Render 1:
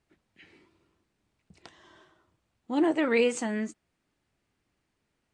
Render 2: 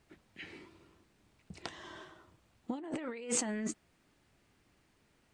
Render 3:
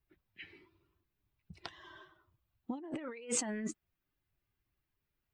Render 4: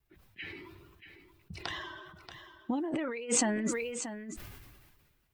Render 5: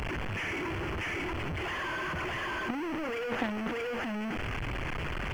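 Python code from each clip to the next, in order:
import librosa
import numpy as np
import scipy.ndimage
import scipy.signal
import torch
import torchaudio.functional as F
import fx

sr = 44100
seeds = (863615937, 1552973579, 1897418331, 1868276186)

y1 = fx.over_compress(x, sr, threshold_db=-37.0, ratio=-1.0)
y1 = y1 * 10.0 ** (-1.5 / 20.0)
y2 = fx.bin_expand(y1, sr, power=1.5)
y3 = fx.vibrato(y2, sr, rate_hz=1.4, depth_cents=21.0)
y3 = y3 + 10.0 ** (-11.0 / 20.0) * np.pad(y3, (int(632 * sr / 1000.0), 0))[:len(y3)]
y3 = fx.sustainer(y3, sr, db_per_s=35.0)
y3 = y3 * 10.0 ** (5.5 / 20.0)
y4 = fx.delta_mod(y3, sr, bps=16000, step_db=-23.5)
y4 = fx.quant_dither(y4, sr, seeds[0], bits=10, dither='none')
y4 = fx.power_curve(y4, sr, exponent=1.4)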